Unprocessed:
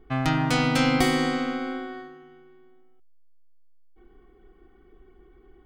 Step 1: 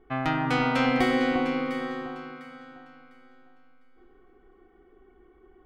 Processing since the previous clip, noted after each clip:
bass and treble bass −8 dB, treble −15 dB
on a send: delay that swaps between a low-pass and a high-pass 351 ms, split 1,500 Hz, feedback 51%, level −5 dB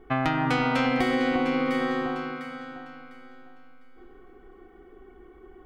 downward compressor 6 to 1, threshold −28 dBFS, peak gain reduction 9 dB
level +7 dB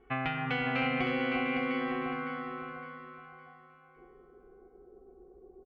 notch comb filter 310 Hz
low-pass filter sweep 2,600 Hz → 550 Hz, 0:01.53–0:03.98
repeating echo 560 ms, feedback 36%, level −7 dB
level −8 dB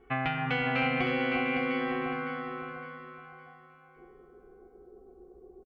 double-tracking delay 14 ms −13 dB
level +2 dB

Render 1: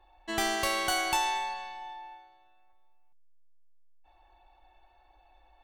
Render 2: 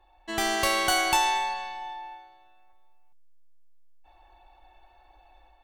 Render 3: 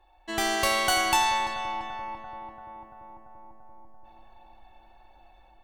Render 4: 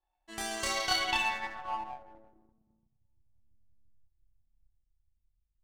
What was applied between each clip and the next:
automatic gain control gain up to 5 dB
feedback echo with a low-pass in the loop 340 ms, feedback 77%, low-pass 1,700 Hz, level −9 dB
low-pass filter sweep 10,000 Hz → 100 Hz, 0:00.50–0:03.09; multi-voice chorus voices 2, 0.55 Hz, delay 29 ms, depth 2.4 ms; power curve on the samples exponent 1.4; level −2 dB

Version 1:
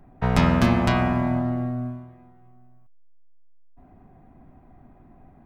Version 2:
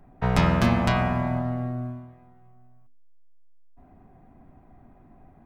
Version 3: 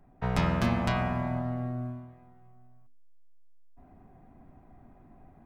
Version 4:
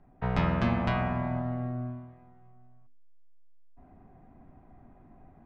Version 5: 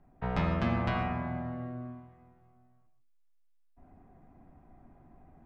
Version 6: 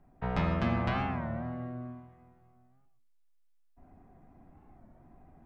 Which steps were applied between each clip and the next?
mains-hum notches 50/100/150/200/250/300/350 Hz; level −1 dB
speech leveller within 4 dB 2 s; level −6 dB
low-pass filter 3,300 Hz 12 dB per octave
reverb whose tail is shaped and stops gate 170 ms flat, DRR 8 dB; level −3 dB
wow of a warped record 33 1/3 rpm, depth 160 cents

